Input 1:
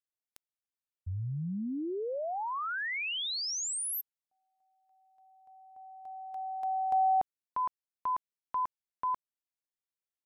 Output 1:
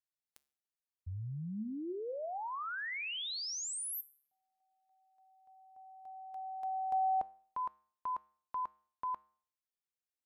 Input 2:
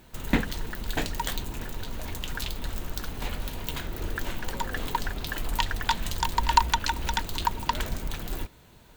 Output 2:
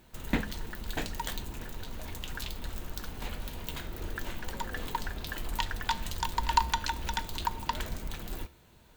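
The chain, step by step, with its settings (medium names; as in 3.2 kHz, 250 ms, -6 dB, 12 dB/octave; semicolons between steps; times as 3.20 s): feedback comb 70 Hz, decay 0.51 s, harmonics odd, mix 50%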